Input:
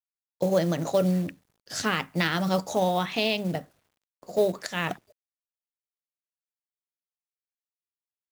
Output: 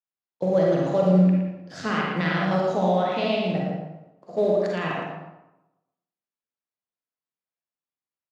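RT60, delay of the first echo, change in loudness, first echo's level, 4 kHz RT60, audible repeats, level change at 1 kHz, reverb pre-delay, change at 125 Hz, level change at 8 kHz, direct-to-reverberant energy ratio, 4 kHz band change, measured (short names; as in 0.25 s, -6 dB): 0.95 s, 0.114 s, +3.5 dB, -5.5 dB, 0.60 s, 1, +3.0 dB, 38 ms, +5.5 dB, under -10 dB, -3.5 dB, -3.5 dB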